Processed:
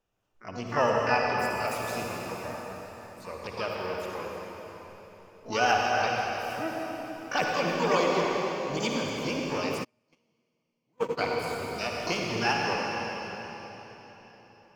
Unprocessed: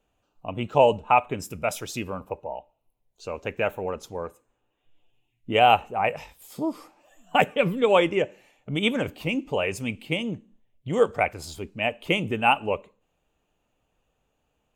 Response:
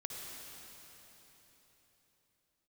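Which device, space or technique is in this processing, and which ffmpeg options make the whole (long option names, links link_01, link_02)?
shimmer-style reverb: -filter_complex "[0:a]asplit=2[link_01][link_02];[link_02]asetrate=88200,aresample=44100,atempo=0.5,volume=-4dB[link_03];[link_01][link_03]amix=inputs=2:normalize=0[link_04];[1:a]atrim=start_sample=2205[link_05];[link_04][link_05]afir=irnorm=-1:irlink=0,asplit=3[link_06][link_07][link_08];[link_06]afade=type=out:start_time=9.83:duration=0.02[link_09];[link_07]agate=range=-41dB:threshold=-20dB:ratio=16:detection=peak,afade=type=in:start_time=9.83:duration=0.02,afade=type=out:start_time=11.17:duration=0.02[link_10];[link_08]afade=type=in:start_time=11.17:duration=0.02[link_11];[link_09][link_10][link_11]amix=inputs=3:normalize=0,volume=-5dB"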